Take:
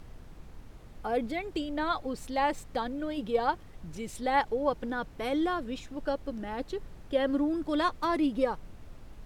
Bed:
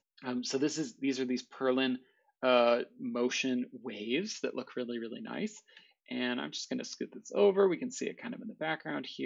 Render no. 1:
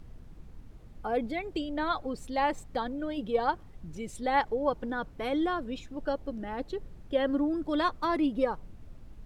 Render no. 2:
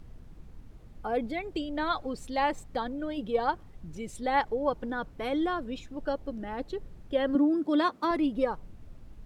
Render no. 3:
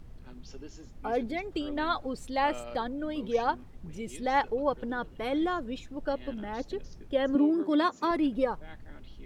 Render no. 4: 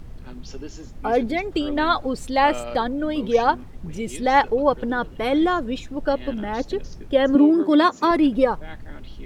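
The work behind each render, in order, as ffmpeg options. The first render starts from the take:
-af "afftdn=nr=7:nf=-49"
-filter_complex "[0:a]asettb=1/sr,asplit=3[s0][s1][s2];[s0]atrim=end=1.744[s3];[s1]atrim=start=1.74:end=2.49,asetpts=PTS-STARTPTS,afade=t=in:d=0.004:c=qsin,afade=t=out:st=0.746:d=0.004:c=qsin,equalizer=f=4500:t=o:w=2.4:g=2.5[s4];[s2]atrim=start=2.486[s5];[s3][s4]acrossfade=d=0.004:c1=hsin:c2=qsin[s6];[s6][s5]acrossfade=d=0.004:c1=qsin:c2=hsin,asettb=1/sr,asplit=3[s7][s8][s9];[s7]atrim=end=7.354[s10];[s8]atrim=start=7.35:end=8.11,asetpts=PTS-STARTPTS,afade=t=in:d=0.004:c=qsin,afade=t=out:st=0.756:d=0.004:c=qsin,highpass=f=230:t=q:w=1.8[s11];[s9]atrim=start=8.106[s12];[s10][s11]acrossfade=d=0.004:c1=hsin:c2=qsin[s13];[s13][s12]acrossfade=d=0.004:c1=qsin:c2=hsin"
-filter_complex "[1:a]volume=0.158[s0];[0:a][s0]amix=inputs=2:normalize=0"
-af "volume=2.99"

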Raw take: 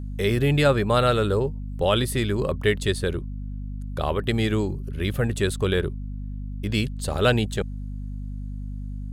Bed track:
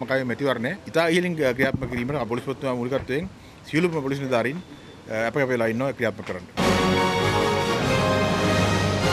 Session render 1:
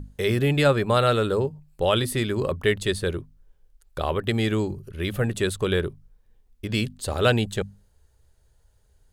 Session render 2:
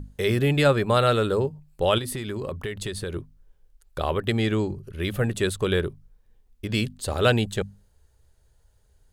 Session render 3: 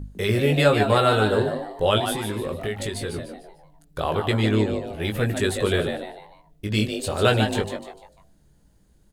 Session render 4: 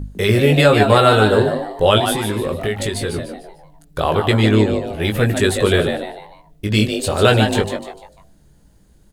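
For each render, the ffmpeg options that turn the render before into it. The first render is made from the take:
-af "bandreject=f=50:t=h:w=6,bandreject=f=100:t=h:w=6,bandreject=f=150:t=h:w=6,bandreject=f=200:t=h:w=6,bandreject=f=250:t=h:w=6"
-filter_complex "[0:a]asettb=1/sr,asplit=3[s0][s1][s2];[s0]atrim=end=1.984[s3];[s1]atrim=start=1.98:end=3.16,asetpts=PTS-STARTPTS,afade=t=in:d=0.004:c=qsin,afade=t=out:st=1.176:d=0.004:c=qsin,acompressor=threshold=0.0501:ratio=10:attack=3.2:release=140:knee=1:detection=peak[s4];[s2]atrim=start=3.156[s5];[s3][s4]acrossfade=d=0.004:c1=hsin:c2=qsin[s6];[s6][s5]acrossfade=d=0.004:c1=qsin:c2=hsin,asettb=1/sr,asplit=3[s7][s8][s9];[s7]atrim=end=4.334[s10];[s8]atrim=start=4.33:end=4.88,asetpts=PTS-STARTPTS,afade=t=in:d=0.004:c=qsin,afade=t=out:st=0.546:d=0.004:c=qsin,highshelf=f=9800:g=-10.5[s11];[s9]atrim=start=4.876[s12];[s10][s11]acrossfade=d=0.004:c1=hsin:c2=qsin[s13];[s13][s12]acrossfade=d=0.004:c1=qsin:c2=hsin"
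-filter_complex "[0:a]asplit=2[s0][s1];[s1]adelay=19,volume=0.596[s2];[s0][s2]amix=inputs=2:normalize=0,asplit=5[s3][s4][s5][s6][s7];[s4]adelay=149,afreqshift=140,volume=0.422[s8];[s5]adelay=298,afreqshift=280,volume=0.157[s9];[s6]adelay=447,afreqshift=420,volume=0.0575[s10];[s7]adelay=596,afreqshift=560,volume=0.0214[s11];[s3][s8][s9][s10][s11]amix=inputs=5:normalize=0"
-af "volume=2.24,alimiter=limit=0.891:level=0:latency=1"

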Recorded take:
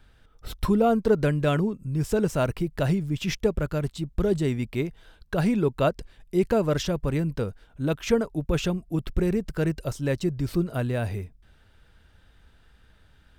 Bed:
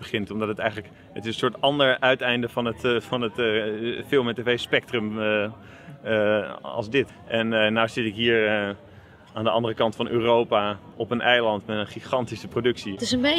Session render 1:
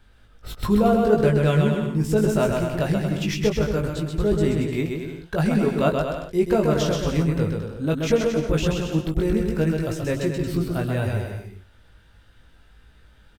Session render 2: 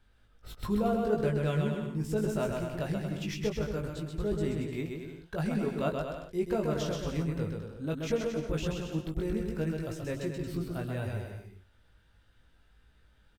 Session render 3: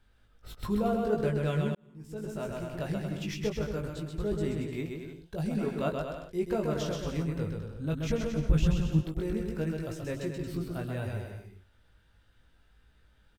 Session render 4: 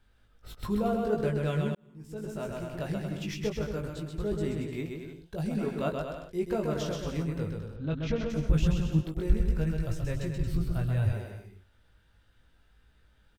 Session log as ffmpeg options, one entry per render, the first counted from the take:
-filter_complex "[0:a]asplit=2[s0][s1];[s1]adelay=19,volume=0.631[s2];[s0][s2]amix=inputs=2:normalize=0,aecho=1:1:130|227.5|300.6|355.5|396.6:0.631|0.398|0.251|0.158|0.1"
-af "volume=0.299"
-filter_complex "[0:a]asettb=1/sr,asplit=3[s0][s1][s2];[s0]atrim=end=5.134[s3];[s1]atrim=start=5.13:end=5.58,asetpts=PTS-STARTPTS,afade=t=in:d=0.004:c=qsin,afade=t=out:st=0.446:d=0.004:c=qsin,equalizer=f=1400:t=o:w=1.4:g=-10.5[s4];[s2]atrim=start=5.576[s5];[s3][s4]acrossfade=d=0.004:c1=hsin:c2=qsin[s6];[s6][s5]acrossfade=d=0.004:c1=qsin:c2=hsin,asettb=1/sr,asplit=3[s7][s8][s9];[s7]atrim=end=7.374[s10];[s8]atrim=start=7.37:end=9.03,asetpts=PTS-STARTPTS,afade=t=in:d=0.004:c=qsin,afade=t=out:st=1.656:d=0.004:c=qsin,asubboost=boost=11.5:cutoff=170[s11];[s9]atrim=start=9.026[s12];[s10][s11]acrossfade=d=0.004:c1=hsin:c2=qsin[s13];[s13][s12]acrossfade=d=0.004:c1=qsin:c2=hsin,asplit=2[s14][s15];[s14]atrim=end=1.75,asetpts=PTS-STARTPTS,afade=t=out:st=1.746:d=0.004:c=hsin[s16];[s15]atrim=start=1.75,asetpts=PTS-STARTPTS,afade=t=in:d=1.2[s17];[s16][s17]concat=n=2:v=0:a=1"
-filter_complex "[0:a]asettb=1/sr,asplit=3[s0][s1][s2];[s0]atrim=end=7.764[s3];[s1]atrim=start=7.76:end=8.3,asetpts=PTS-STARTPTS,afade=t=in:d=0.004:c=qsin,afade=t=out:st=0.536:d=0.004:c=qsin,lowpass=f=5000:w=0.5412,lowpass=f=5000:w=1.3066[s4];[s2]atrim=start=8.296[s5];[s3][s4]acrossfade=d=0.004:c1=hsin:c2=qsin[s6];[s6][s5]acrossfade=d=0.004:c1=qsin:c2=hsin,asplit=3[s7][s8][s9];[s7]afade=t=out:st=9.27:d=0.02[s10];[s8]asubboost=boost=11:cutoff=90,afade=t=in:st=9.27:d=0.02,afade=t=out:st=11.12:d=0.02[s11];[s9]afade=t=in:st=11.12:d=0.02[s12];[s10][s11][s12]amix=inputs=3:normalize=0"

